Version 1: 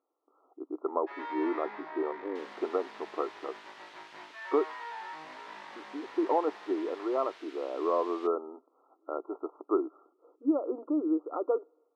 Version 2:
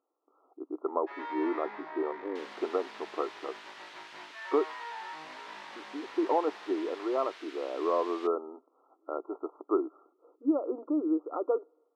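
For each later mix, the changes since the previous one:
second sound +4.0 dB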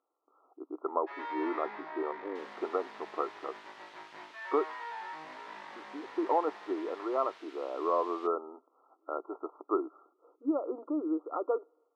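speech: add tilt shelf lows -5 dB, about 780 Hz; second sound -6.5 dB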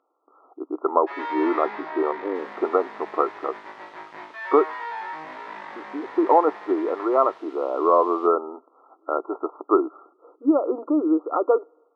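speech +11.5 dB; first sound +9.0 dB

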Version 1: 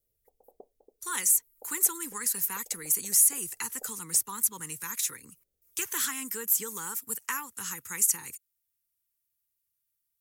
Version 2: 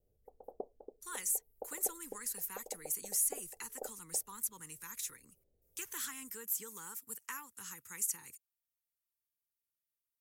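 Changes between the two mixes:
speech -11.0 dB; background +8.5 dB

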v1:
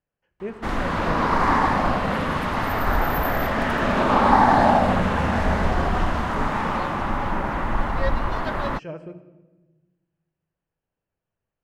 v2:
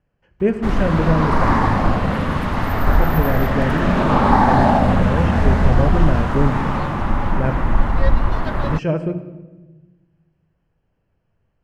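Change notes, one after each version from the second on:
speech +11.5 dB; master: add low shelf 230 Hz +9.5 dB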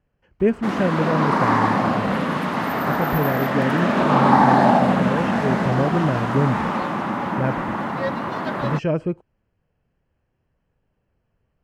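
background: add HPF 160 Hz 24 dB/oct; reverb: off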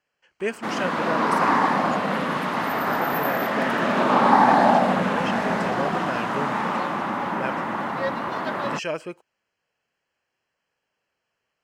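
speech: add tilt +4.5 dB/oct; master: add low shelf 230 Hz -9.5 dB

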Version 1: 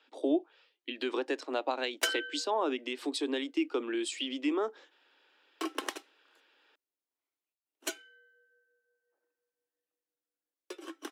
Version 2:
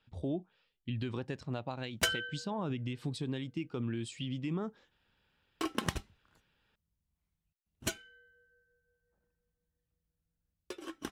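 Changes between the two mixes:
speech -9.0 dB; master: remove steep high-pass 280 Hz 72 dB/oct

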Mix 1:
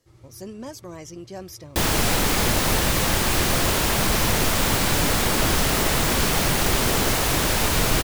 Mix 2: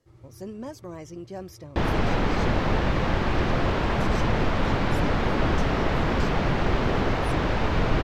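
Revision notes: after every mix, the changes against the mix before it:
second sound: add air absorption 210 m; master: add high shelf 2800 Hz -10.5 dB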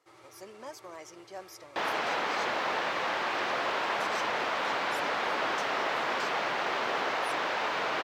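first sound +11.5 dB; master: add HPF 690 Hz 12 dB/oct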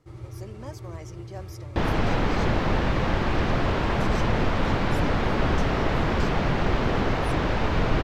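speech: add HPF 580 Hz 6 dB/oct; master: remove HPF 690 Hz 12 dB/oct

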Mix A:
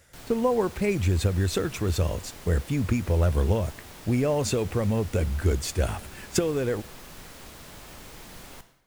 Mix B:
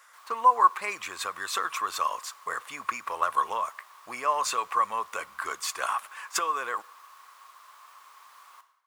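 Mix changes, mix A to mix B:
background -12.0 dB; master: add resonant high-pass 1100 Hz, resonance Q 11

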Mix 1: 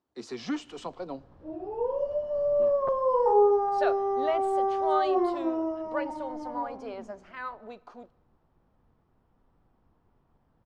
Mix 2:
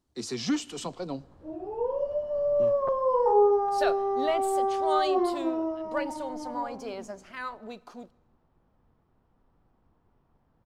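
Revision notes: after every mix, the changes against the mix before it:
speech: remove band-pass 850 Hz, Q 0.5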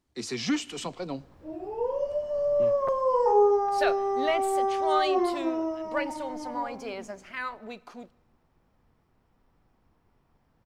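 background: remove LPF 3200 Hz 12 dB/oct; master: add bell 2200 Hz +7 dB 0.85 oct

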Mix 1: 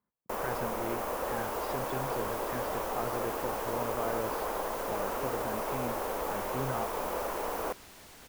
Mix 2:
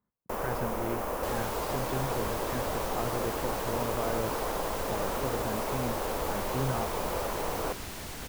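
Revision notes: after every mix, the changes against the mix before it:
second sound +10.5 dB; master: add low shelf 210 Hz +8 dB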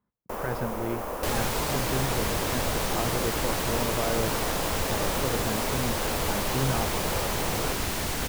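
speech +3.5 dB; second sound +10.5 dB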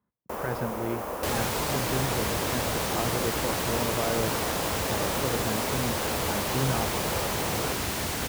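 master: add HPF 58 Hz

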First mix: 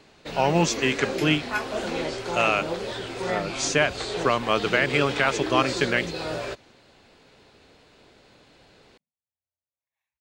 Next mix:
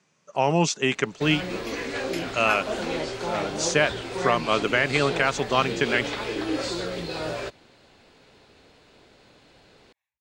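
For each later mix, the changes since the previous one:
first sound: entry +0.95 s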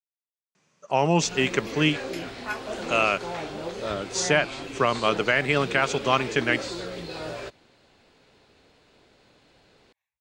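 speech: entry +0.55 s; first sound -4.0 dB

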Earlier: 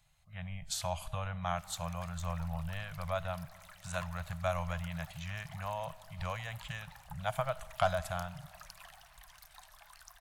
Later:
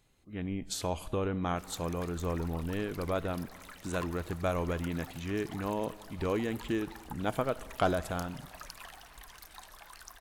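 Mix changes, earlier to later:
background +5.0 dB; master: remove elliptic band-stop 160–630 Hz, stop band 50 dB

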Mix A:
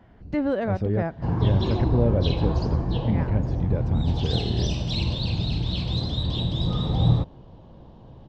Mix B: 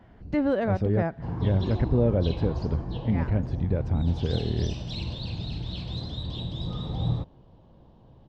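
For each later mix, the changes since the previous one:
background -7.5 dB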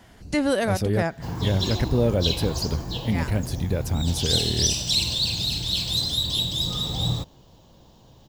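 master: remove tape spacing loss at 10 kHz 44 dB

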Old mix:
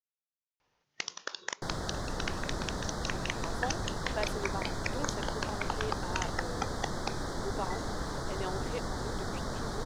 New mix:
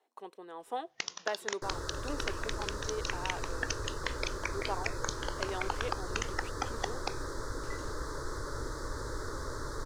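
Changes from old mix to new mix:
speech: entry -2.90 s; second sound: add fixed phaser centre 740 Hz, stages 6

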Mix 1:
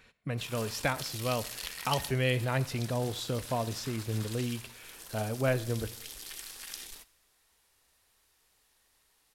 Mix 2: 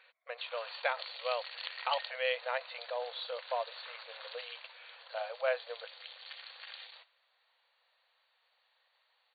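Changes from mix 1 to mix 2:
speech: send off; master: add brick-wall FIR band-pass 470–4600 Hz

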